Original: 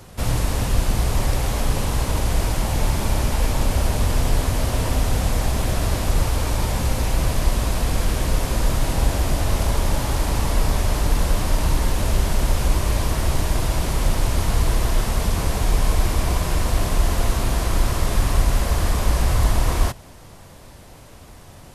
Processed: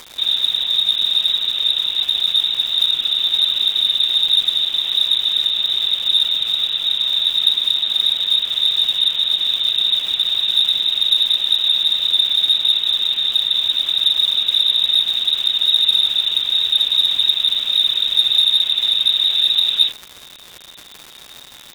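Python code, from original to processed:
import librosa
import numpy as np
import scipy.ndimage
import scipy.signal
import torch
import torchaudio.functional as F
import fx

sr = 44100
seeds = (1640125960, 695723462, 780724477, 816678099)

p1 = fx.low_shelf(x, sr, hz=410.0, db=6.5)
p2 = fx.freq_invert(p1, sr, carrier_hz=3700)
p3 = fx.whisperise(p2, sr, seeds[0])
p4 = np.clip(p3, -10.0 ** (-3.5 / 20.0), 10.0 ** (-3.5 / 20.0))
p5 = p3 + (p4 * librosa.db_to_amplitude(-3.0))
p6 = fx.dmg_crackle(p5, sr, seeds[1], per_s=290.0, level_db=-13.0)
y = p6 * librosa.db_to_amplitude(-11.5)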